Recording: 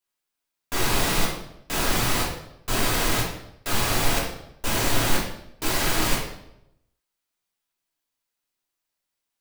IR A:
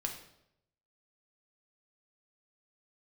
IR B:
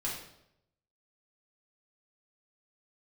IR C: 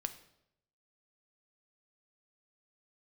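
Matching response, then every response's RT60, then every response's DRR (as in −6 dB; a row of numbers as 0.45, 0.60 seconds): B; 0.80, 0.80, 0.80 seconds; 2.0, −6.0, 9.0 decibels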